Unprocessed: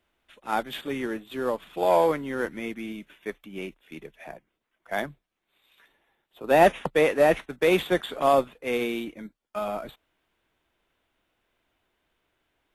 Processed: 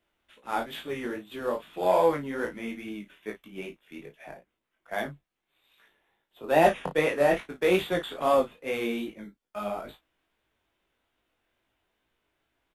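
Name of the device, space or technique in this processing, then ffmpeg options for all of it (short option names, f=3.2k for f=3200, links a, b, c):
double-tracked vocal: -filter_complex "[0:a]asplit=2[a][b];[b]adelay=34,volume=-9dB[c];[a][c]amix=inputs=2:normalize=0,flanger=delay=18:depth=3.9:speed=2.4"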